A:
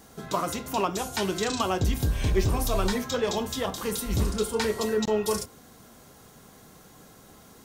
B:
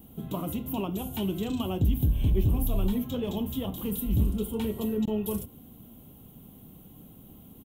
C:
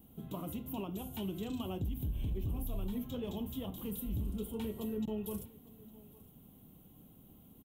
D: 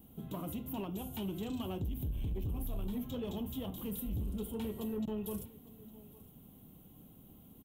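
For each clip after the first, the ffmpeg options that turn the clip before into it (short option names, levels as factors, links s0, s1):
-filter_complex "[0:a]firequalizer=gain_entry='entry(270,0);entry(420,-10);entry(850,-13);entry(1700,-25);entry(3000,-6);entry(4800,-29);entry(13000,1)':delay=0.05:min_phase=1,asplit=2[s0][s1];[s1]acompressor=threshold=0.0178:ratio=6,volume=0.75[s2];[s0][s2]amix=inputs=2:normalize=0"
-af "alimiter=limit=0.0891:level=0:latency=1:release=56,aecho=1:1:858:0.0891,volume=0.376"
-af "asoftclip=type=tanh:threshold=0.0266,volume=1.19"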